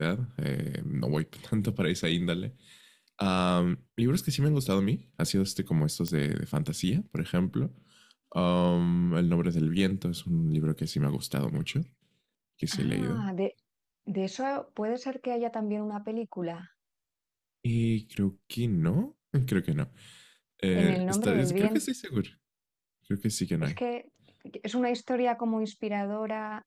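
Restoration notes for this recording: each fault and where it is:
6.08 pop -15 dBFS

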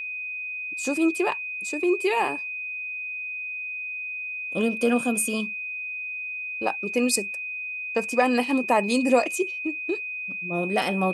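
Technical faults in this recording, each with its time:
tone 2500 Hz -30 dBFS

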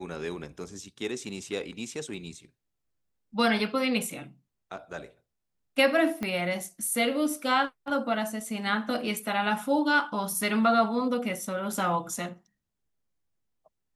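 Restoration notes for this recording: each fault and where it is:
6.23 pop -18 dBFS

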